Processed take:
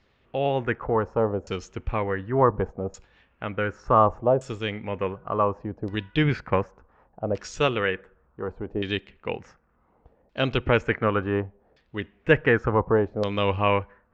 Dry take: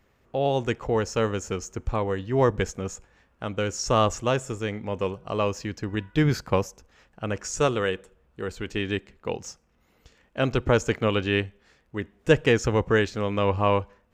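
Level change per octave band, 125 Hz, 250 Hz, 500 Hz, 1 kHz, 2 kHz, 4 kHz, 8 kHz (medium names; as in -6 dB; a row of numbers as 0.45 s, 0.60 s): -1.0 dB, -0.5 dB, +0.5 dB, +3.0 dB, +1.5 dB, -1.5 dB, -13.5 dB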